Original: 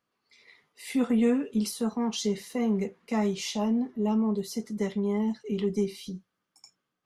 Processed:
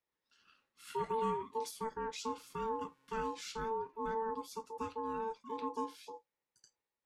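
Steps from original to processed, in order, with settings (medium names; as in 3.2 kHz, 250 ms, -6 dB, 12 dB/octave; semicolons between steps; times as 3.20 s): 2.27–3.28 s: mains buzz 400 Hz, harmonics 35, -63 dBFS -6 dB/octave; ring modulator 670 Hz; trim -8.5 dB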